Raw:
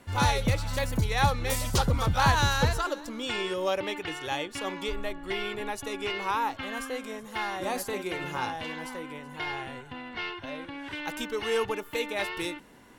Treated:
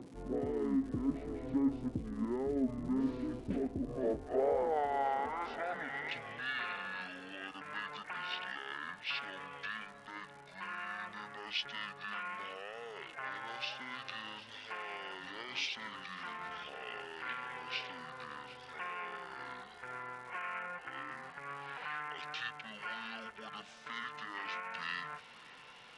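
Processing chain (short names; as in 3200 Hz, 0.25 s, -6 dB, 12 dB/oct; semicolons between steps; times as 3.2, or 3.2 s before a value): high shelf 10000 Hz -6.5 dB; reverse; compressor 6:1, threshold -34 dBFS, peak gain reduction 15.5 dB; reverse; limiter -33 dBFS, peak gain reduction 10 dB; upward compressor, threshold -57 dBFS; band-pass sweep 560 Hz -> 5400 Hz, 1.82–3.24; crackle 470/s -67 dBFS; speed mistake 15 ips tape played at 7.5 ips; on a send: darkening echo 0.561 s, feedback 68%, low-pass 1600 Hz, level -17 dB; on the sum: gain +15.5 dB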